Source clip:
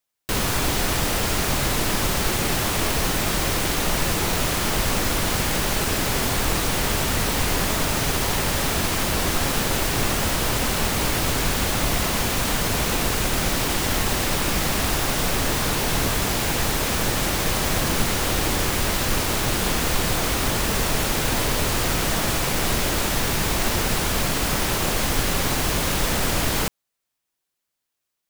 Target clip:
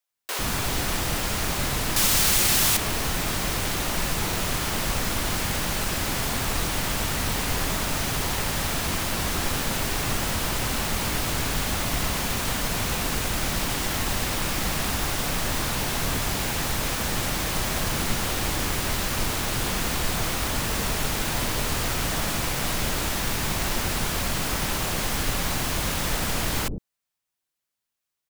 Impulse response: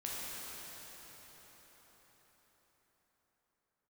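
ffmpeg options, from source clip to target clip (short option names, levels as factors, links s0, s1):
-filter_complex "[0:a]asettb=1/sr,asplit=3[s0][s1][s2];[s0]atrim=end=1.964[s3];[s1]atrim=start=1.96:end=2.77,asetpts=PTS-STARTPTS,afade=t=in:d=0.004:c=qsin,afade=t=out:st=0.806:d=0.004:c=qsin,highshelf=f=2500:g=11[s4];[s2]atrim=start=2.766[s5];[s3][s4]acrossfade=d=0.004:c1=hsin:c2=qsin[s6];[s6][s5]acrossfade=d=0.004:c1=qsin:c2=hsin,acrossover=split=420[s7][s8];[s7]adelay=100[s9];[s9][s8]amix=inputs=2:normalize=0,volume=0.668"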